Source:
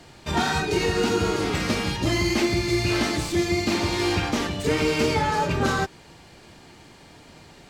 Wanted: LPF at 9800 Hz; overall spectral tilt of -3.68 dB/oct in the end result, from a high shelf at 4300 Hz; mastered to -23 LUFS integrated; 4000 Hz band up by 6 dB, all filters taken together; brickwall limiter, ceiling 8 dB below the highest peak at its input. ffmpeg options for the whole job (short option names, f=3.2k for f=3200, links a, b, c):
-af "lowpass=9.8k,equalizer=f=4k:t=o:g=5.5,highshelf=f=4.3k:g=3.5,volume=2.5dB,alimiter=limit=-14.5dB:level=0:latency=1"